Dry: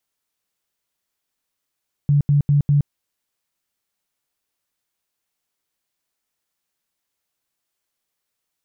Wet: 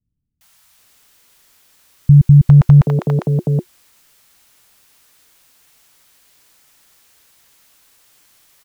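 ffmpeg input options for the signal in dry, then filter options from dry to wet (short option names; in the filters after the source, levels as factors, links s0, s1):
-f lavfi -i "aevalsrc='0.251*sin(2*PI*144*mod(t,0.2))*lt(mod(t,0.2),17/144)':d=0.8:s=44100"
-filter_complex "[0:a]bandreject=f=360:w=12,apsyclip=20,acrossover=split=190|620[s0][s1][s2];[s2]adelay=410[s3];[s1]adelay=780[s4];[s0][s4][s3]amix=inputs=3:normalize=0"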